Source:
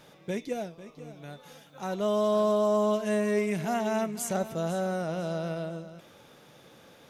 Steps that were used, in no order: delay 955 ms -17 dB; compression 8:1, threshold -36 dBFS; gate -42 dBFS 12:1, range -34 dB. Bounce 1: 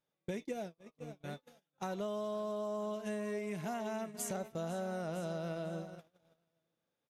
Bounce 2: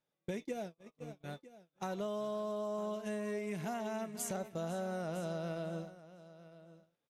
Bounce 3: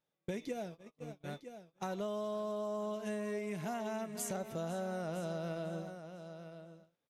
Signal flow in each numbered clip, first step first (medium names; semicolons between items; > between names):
delay > compression > gate; compression > gate > delay; gate > delay > compression